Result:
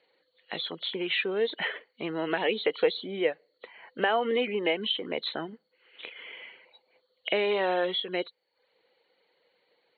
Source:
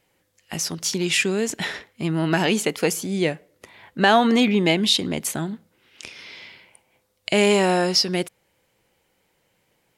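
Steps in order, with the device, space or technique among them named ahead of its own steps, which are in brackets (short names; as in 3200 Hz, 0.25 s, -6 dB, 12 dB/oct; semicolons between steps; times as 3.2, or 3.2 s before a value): reverb removal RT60 0.54 s; hearing aid with frequency lowering (nonlinear frequency compression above 2900 Hz 4:1; compressor 3:1, threshold -22 dBFS, peak gain reduction 8.5 dB; speaker cabinet 370–5400 Hz, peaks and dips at 480 Hz +9 dB, 2000 Hz +3 dB, 3600 Hz -8 dB); gain -2.5 dB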